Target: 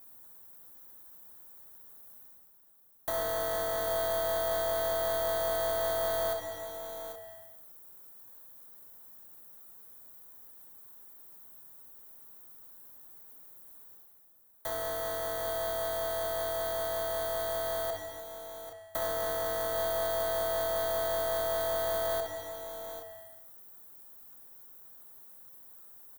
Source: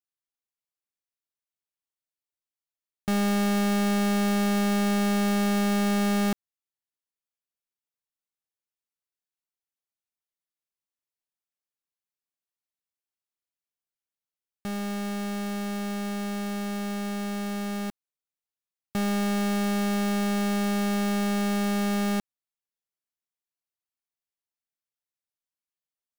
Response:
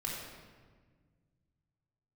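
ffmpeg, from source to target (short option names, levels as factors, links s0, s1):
-filter_complex "[0:a]aemphasis=mode=production:type=50fm,bandreject=f=65.5:t=h:w=4,bandreject=f=131:t=h:w=4,bandreject=f=196.5:t=h:w=4,bandreject=f=262:t=h:w=4,bandreject=f=327.5:t=h:w=4,bandreject=f=393:t=h:w=4,bandreject=f=458.5:t=h:w=4,bandreject=f=524:t=h:w=4,bandreject=f=589.5:t=h:w=4,bandreject=f=655:t=h:w=4,bandreject=f=720.5:t=h:w=4,bandreject=f=786:t=h:w=4,bandreject=f=851.5:t=h:w=4,bandreject=f=917:t=h:w=4,bandreject=f=982.5:t=h:w=4,bandreject=f=1048:t=h:w=4,bandreject=f=1113.5:t=h:w=4,bandreject=f=1179:t=h:w=4,bandreject=f=1244.5:t=h:w=4,bandreject=f=1310:t=h:w=4,bandreject=f=1375.5:t=h:w=4,bandreject=f=1441:t=h:w=4,bandreject=f=1506.5:t=h:w=4,bandreject=f=1572:t=h:w=4,bandreject=f=1637.5:t=h:w=4,bandreject=f=1703:t=h:w=4,bandreject=f=1768.5:t=h:w=4,bandreject=f=1834:t=h:w=4,bandreject=f=1899.5:t=h:w=4,bandreject=f=1965:t=h:w=4,bandreject=f=2030.5:t=h:w=4,bandreject=f=2096:t=h:w=4,bandreject=f=2161.5:t=h:w=4,bandreject=f=2227:t=h:w=4,bandreject=f=2292.5:t=h:w=4,areverse,acompressor=mode=upward:threshold=0.0447:ratio=2.5,areverse,afreqshift=460,acrossover=split=510|7700[s0][s1][s2];[s1]acrusher=samples=17:mix=1:aa=0.000001[s3];[s0][s3][s2]amix=inputs=3:normalize=0,acrossover=split=320|1200[s4][s5][s6];[s4]acompressor=threshold=0.00501:ratio=4[s7];[s5]acompressor=threshold=0.0316:ratio=4[s8];[s6]acompressor=threshold=0.0251:ratio=4[s9];[s7][s8][s9]amix=inputs=3:normalize=0,aeval=exprs='0.224*(cos(1*acos(clip(val(0)/0.224,-1,1)))-cos(1*PI/2))+0.00562*(cos(8*acos(clip(val(0)/0.224,-1,1)))-cos(8*PI/2))':c=same,aecho=1:1:63|790|825:0.335|0.299|0.188,volume=0.708"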